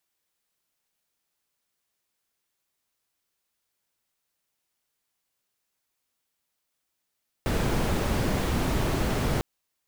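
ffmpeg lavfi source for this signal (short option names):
-f lavfi -i "anoisesrc=c=brown:a=0.263:d=1.95:r=44100:seed=1"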